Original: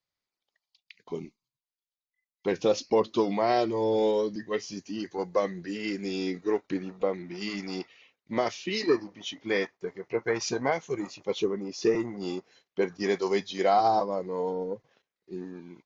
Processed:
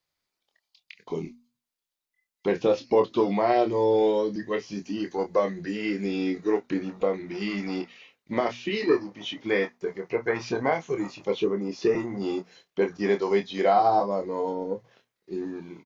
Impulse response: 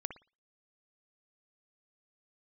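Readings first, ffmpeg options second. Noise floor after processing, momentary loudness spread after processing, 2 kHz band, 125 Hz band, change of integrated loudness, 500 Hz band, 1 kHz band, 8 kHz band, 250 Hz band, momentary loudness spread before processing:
-85 dBFS, 12 LU, +2.5 dB, +3.0 dB, +2.5 dB, +3.0 dB, +2.5 dB, n/a, +3.0 dB, 14 LU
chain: -filter_complex "[0:a]acrossover=split=3500[a][b];[b]acompressor=threshold=-56dB:ratio=4:attack=1:release=60[c];[a][c]amix=inputs=2:normalize=0,bandreject=f=60:t=h:w=6,bandreject=f=120:t=h:w=6,bandreject=f=180:t=h:w=6,bandreject=f=240:t=h:w=6,asplit=2[d][e];[e]acompressor=threshold=-35dB:ratio=6,volume=-1dB[f];[d][f]amix=inputs=2:normalize=0,asplit=2[g][h];[h]adelay=25,volume=-7dB[i];[g][i]amix=inputs=2:normalize=0"

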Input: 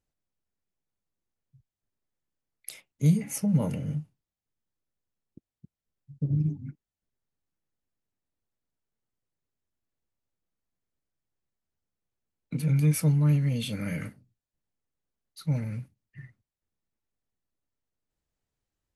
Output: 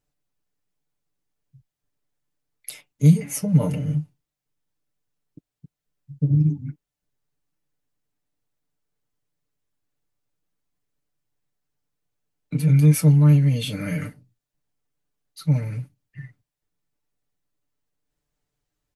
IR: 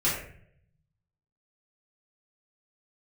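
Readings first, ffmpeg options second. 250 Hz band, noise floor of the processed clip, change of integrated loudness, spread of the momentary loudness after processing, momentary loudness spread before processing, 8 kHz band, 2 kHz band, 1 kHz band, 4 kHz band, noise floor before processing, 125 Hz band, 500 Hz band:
+6.5 dB, under -85 dBFS, +7.5 dB, 20 LU, 20 LU, +5.0 dB, +5.0 dB, n/a, +6.0 dB, under -85 dBFS, +8.0 dB, +6.5 dB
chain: -af "aecho=1:1:6.8:0.69,volume=3.5dB"

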